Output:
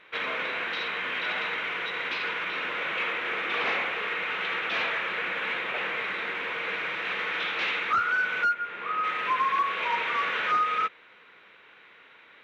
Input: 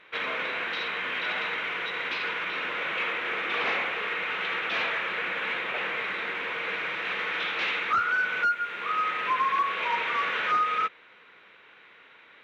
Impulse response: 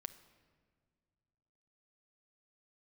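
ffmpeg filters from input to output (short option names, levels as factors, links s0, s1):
-filter_complex "[0:a]asettb=1/sr,asplit=3[s0][s1][s2];[s0]atrim=end=8.534[s3];[s1]atrim=start=8.53:end=9.04,asetpts=PTS-STARTPTS,afade=t=in:d=0.004:c=qsin,afade=t=out:st=0.506:d=0.004:c=qsin,lowpass=f=2000:p=1[s4];[s2]atrim=start=9.036[s5];[s3][s4]acrossfade=d=0.004:c1=hsin:c2=qsin[s6];[s6][s5]acrossfade=d=0.004:c1=qsin:c2=hsin"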